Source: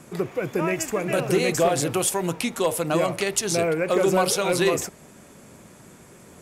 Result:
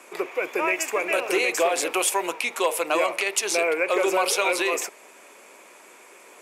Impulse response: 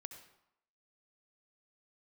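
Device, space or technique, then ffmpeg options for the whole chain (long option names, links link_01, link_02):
laptop speaker: -af "highpass=frequency=370:width=0.5412,highpass=frequency=370:width=1.3066,equalizer=frequency=1000:width_type=o:width=0.54:gain=5,equalizer=frequency=2400:width_type=o:width=0.53:gain=10,alimiter=limit=-12dB:level=0:latency=1:release=109"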